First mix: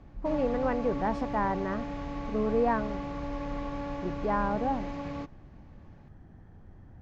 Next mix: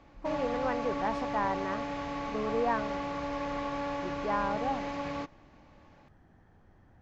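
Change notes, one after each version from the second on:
background +6.0 dB; master: add low shelf 360 Hz -11 dB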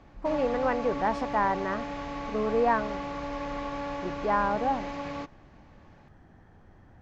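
speech +5.5 dB

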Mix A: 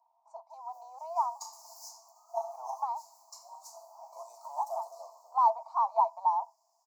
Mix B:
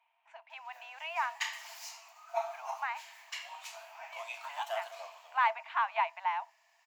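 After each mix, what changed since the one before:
speech -6.5 dB; master: remove inverse Chebyshev band-stop 1500–3500 Hz, stop band 40 dB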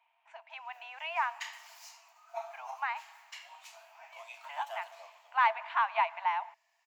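background -6.0 dB; reverb: on, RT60 2.1 s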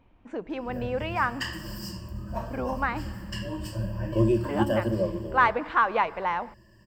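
background: add ripple EQ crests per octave 1.3, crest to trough 18 dB; master: remove rippled Chebyshev high-pass 650 Hz, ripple 9 dB

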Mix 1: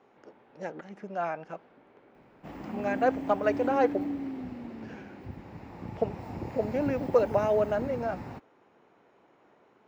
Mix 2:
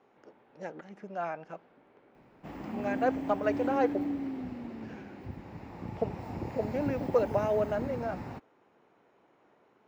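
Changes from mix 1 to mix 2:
speech -4.5 dB; reverb: on

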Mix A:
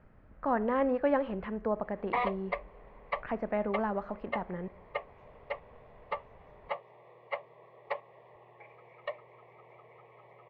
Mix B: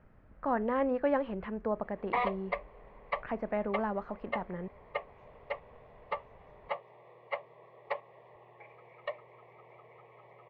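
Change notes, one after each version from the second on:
reverb: off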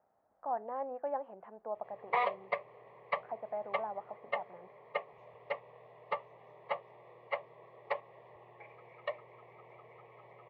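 speech: add band-pass 750 Hz, Q 3.9; master: add HPF 51 Hz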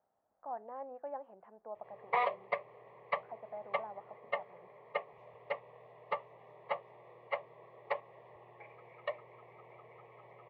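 speech -6.0 dB; master: add air absorption 52 m

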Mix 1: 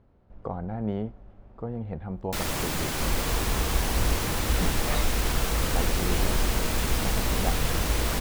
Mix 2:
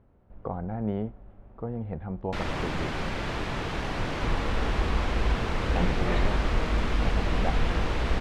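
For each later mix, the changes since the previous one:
second sound: entry +1.20 s; master: add LPF 2900 Hz 12 dB/oct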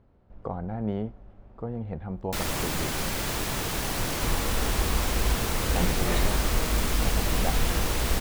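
master: remove LPF 2900 Hz 12 dB/oct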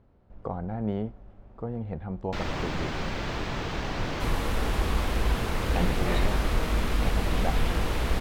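first sound: add air absorption 190 m

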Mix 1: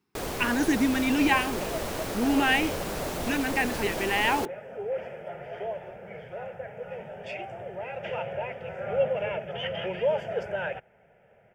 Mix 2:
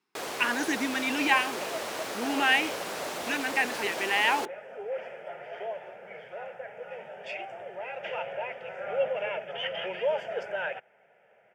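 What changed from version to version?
master: add weighting filter A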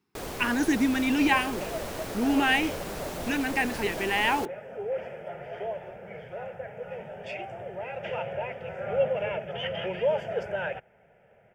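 first sound -3.5 dB; master: remove weighting filter A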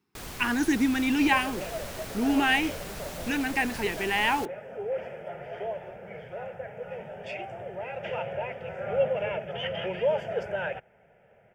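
first sound: add bell 490 Hz -10 dB 1.9 oct

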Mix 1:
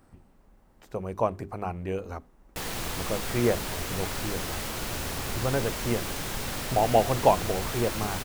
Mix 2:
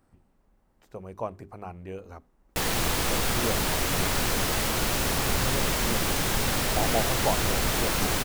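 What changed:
speech -7.0 dB; background +7.0 dB

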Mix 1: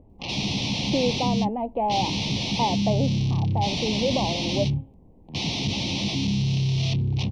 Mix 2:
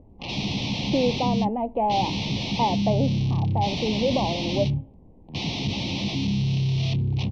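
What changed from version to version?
speech: send +11.0 dB; master: add air absorption 98 m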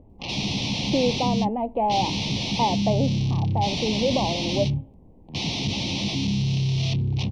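master: remove air absorption 98 m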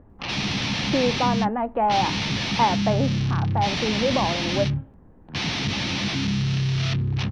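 master: remove Butterworth band-stop 1500 Hz, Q 0.9

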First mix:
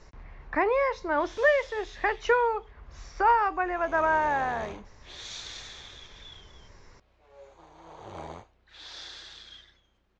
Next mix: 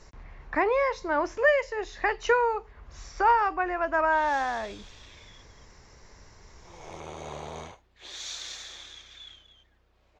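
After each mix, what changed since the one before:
background: entry +2.95 s; master: remove air absorption 75 m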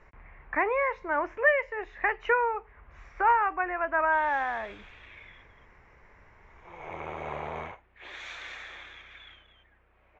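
speech -6.0 dB; master: add EQ curve 280 Hz 0 dB, 2300 Hz +8 dB, 4600 Hz -18 dB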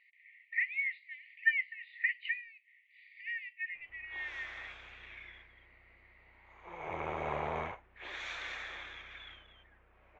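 speech: add brick-wall FIR band-pass 1800–4800 Hz; background: add high shelf 10000 Hz -6 dB

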